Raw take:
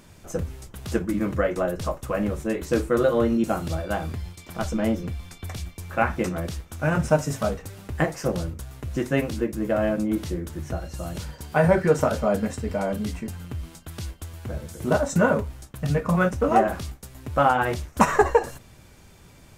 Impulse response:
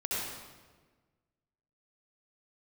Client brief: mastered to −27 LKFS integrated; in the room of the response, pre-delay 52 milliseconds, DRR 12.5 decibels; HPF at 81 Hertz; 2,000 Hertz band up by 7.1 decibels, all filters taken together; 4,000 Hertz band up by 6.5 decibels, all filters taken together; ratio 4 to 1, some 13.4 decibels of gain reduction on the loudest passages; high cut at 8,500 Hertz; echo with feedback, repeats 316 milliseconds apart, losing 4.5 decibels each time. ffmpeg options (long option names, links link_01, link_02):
-filter_complex "[0:a]highpass=81,lowpass=8500,equalizer=frequency=2000:width_type=o:gain=9,equalizer=frequency=4000:width_type=o:gain=5.5,acompressor=threshold=-28dB:ratio=4,aecho=1:1:316|632|948|1264|1580|1896|2212|2528|2844:0.596|0.357|0.214|0.129|0.0772|0.0463|0.0278|0.0167|0.01,asplit=2[link_01][link_02];[1:a]atrim=start_sample=2205,adelay=52[link_03];[link_02][link_03]afir=irnorm=-1:irlink=0,volume=-18.5dB[link_04];[link_01][link_04]amix=inputs=2:normalize=0,volume=3.5dB"